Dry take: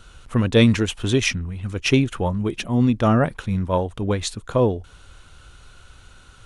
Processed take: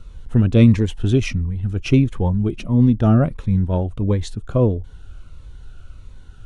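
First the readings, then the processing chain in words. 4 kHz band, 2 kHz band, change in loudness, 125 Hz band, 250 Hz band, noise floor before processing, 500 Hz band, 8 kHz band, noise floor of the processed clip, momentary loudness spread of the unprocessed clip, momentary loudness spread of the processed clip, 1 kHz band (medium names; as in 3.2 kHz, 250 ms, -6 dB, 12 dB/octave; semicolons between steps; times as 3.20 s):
-8.0 dB, -6.5 dB, +2.5 dB, +5.5 dB, +3.0 dB, -48 dBFS, -1.5 dB, no reading, -40 dBFS, 9 LU, 10 LU, -5.0 dB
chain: tilt EQ -2.5 dB/octave; Shepard-style phaser falling 1.5 Hz; trim -2 dB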